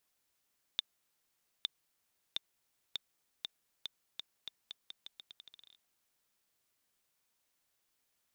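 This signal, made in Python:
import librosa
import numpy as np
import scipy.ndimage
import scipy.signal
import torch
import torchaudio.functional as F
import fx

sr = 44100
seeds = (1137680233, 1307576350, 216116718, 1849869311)

y = fx.bouncing_ball(sr, first_gap_s=0.86, ratio=0.83, hz=3600.0, decay_ms=17.0, level_db=-16.5)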